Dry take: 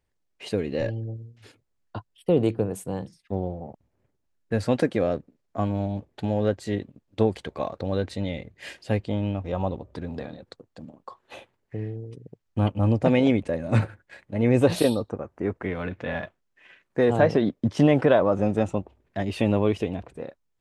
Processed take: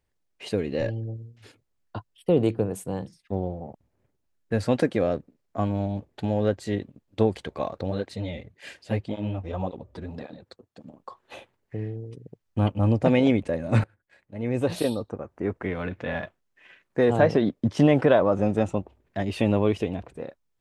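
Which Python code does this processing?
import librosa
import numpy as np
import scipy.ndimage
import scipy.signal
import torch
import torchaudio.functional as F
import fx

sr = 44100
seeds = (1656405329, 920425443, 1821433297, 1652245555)

y = fx.flanger_cancel(x, sr, hz=1.8, depth_ms=7.9, at=(7.9, 10.84), fade=0.02)
y = fx.edit(y, sr, fx.fade_in_from(start_s=13.84, length_s=1.76, floor_db=-20.0), tone=tone)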